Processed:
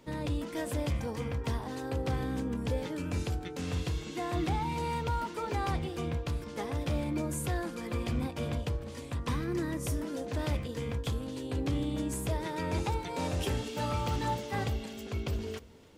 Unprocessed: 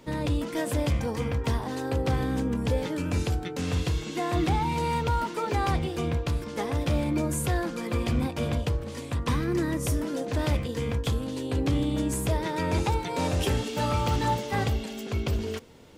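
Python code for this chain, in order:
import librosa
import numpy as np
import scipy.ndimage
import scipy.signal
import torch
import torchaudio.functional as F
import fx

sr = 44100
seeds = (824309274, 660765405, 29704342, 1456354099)

y = x + 10.0 ** (-22.0 / 20.0) * np.pad(x, (int(293 * sr / 1000.0), 0))[:len(x)]
y = y * 10.0 ** (-6.0 / 20.0)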